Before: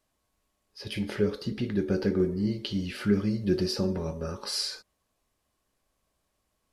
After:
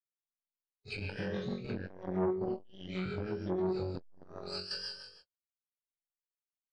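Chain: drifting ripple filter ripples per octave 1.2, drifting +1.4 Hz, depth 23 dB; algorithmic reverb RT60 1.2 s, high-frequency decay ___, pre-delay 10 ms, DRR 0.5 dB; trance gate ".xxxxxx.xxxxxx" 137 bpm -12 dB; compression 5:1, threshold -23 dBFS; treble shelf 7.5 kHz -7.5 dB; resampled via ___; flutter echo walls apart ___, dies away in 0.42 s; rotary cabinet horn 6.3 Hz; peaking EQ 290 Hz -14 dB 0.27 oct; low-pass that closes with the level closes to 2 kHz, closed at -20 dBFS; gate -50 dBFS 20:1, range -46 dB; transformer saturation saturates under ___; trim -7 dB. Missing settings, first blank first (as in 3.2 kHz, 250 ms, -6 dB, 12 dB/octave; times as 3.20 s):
0.9×, 22.05 kHz, 3.7 m, 490 Hz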